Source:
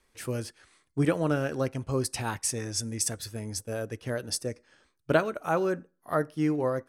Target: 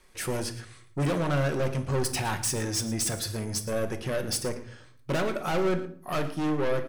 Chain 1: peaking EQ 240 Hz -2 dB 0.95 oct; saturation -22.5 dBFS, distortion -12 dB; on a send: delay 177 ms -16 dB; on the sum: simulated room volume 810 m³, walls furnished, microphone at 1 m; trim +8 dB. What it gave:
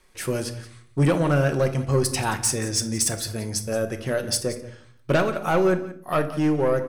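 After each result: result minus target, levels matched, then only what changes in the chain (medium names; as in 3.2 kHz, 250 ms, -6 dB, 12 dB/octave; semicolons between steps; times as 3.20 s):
echo 63 ms late; saturation: distortion -7 dB
change: delay 114 ms -16 dB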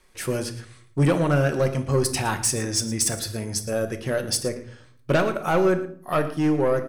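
saturation: distortion -7 dB
change: saturation -33.5 dBFS, distortion -5 dB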